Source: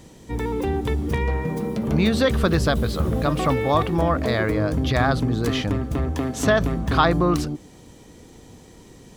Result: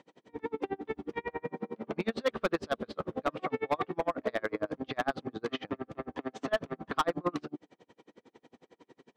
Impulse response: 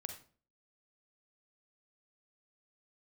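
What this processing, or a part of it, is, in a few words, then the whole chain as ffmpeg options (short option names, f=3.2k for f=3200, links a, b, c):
helicopter radio: -af "highpass=320,lowpass=2.7k,aeval=exprs='val(0)*pow(10,-37*(0.5-0.5*cos(2*PI*11*n/s))/20)':c=same,asoftclip=type=hard:threshold=-19.5dB,volume=-1.5dB"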